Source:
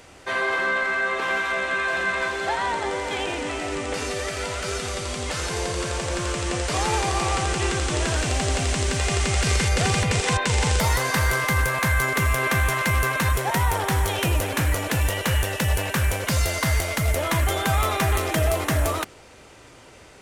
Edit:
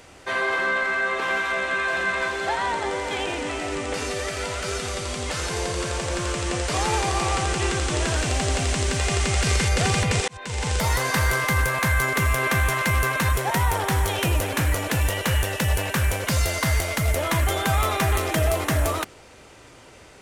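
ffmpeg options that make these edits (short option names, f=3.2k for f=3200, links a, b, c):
-filter_complex "[0:a]asplit=2[a][b];[a]atrim=end=10.28,asetpts=PTS-STARTPTS,afade=t=out:st=10.276:d=0.004:c=hsin[c];[b]atrim=start=10.28,asetpts=PTS-STARTPTS,afade=t=in:d=0.91:c=qsin[d];[c][d]concat=n=2:v=0:a=1"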